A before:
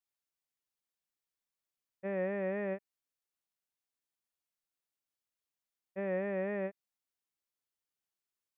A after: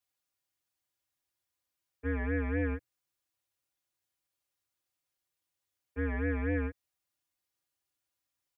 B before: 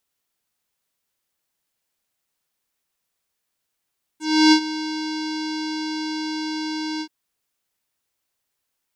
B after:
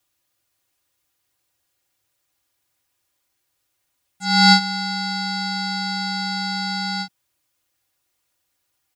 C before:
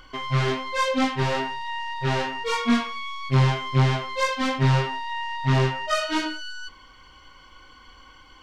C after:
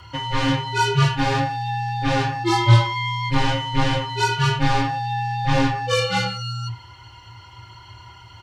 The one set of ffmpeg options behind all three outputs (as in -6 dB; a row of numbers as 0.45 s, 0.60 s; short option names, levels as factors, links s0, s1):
-af "aecho=1:1:4.5:0.96,afreqshift=-120,volume=1.26"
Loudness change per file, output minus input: +3.0 LU, +3.0 LU, +3.0 LU